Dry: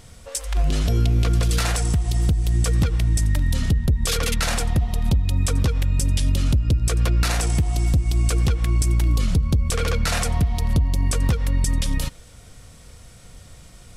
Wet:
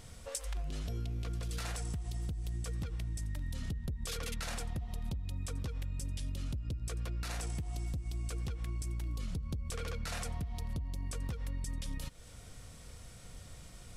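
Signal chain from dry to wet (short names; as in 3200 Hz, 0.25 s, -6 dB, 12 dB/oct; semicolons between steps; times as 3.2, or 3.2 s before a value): compressor, threshold -30 dBFS, peak gain reduction 14.5 dB; gain -6 dB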